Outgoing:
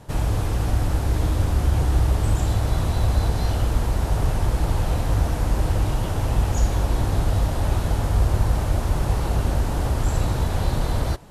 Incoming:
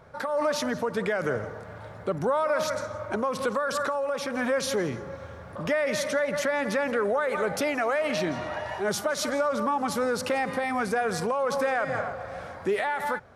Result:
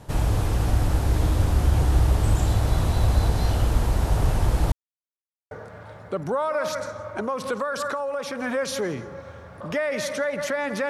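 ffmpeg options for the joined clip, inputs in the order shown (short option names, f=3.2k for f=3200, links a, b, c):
-filter_complex "[0:a]apad=whole_dur=10.89,atrim=end=10.89,asplit=2[a][b];[a]atrim=end=4.72,asetpts=PTS-STARTPTS,afade=t=out:st=4.716:d=0.004:c=hsin[c];[b]atrim=start=4.72:end=5.51,asetpts=PTS-STARTPTS,volume=0[d];[1:a]atrim=start=1.46:end=6.84,asetpts=PTS-STARTPTS,afade=t=in:d=0.004:c=hsin[e];[c][d][e]concat=n=3:v=0:a=1"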